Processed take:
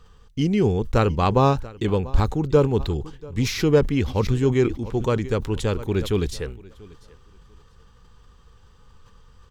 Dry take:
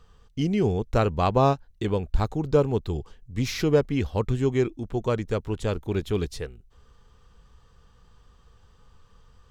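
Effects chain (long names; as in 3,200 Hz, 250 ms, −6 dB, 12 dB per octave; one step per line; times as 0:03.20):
parametric band 660 Hz −7.5 dB 0.24 octaves
repeating echo 688 ms, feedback 19%, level −22.5 dB
level that may fall only so fast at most 110 dB per second
level +3.5 dB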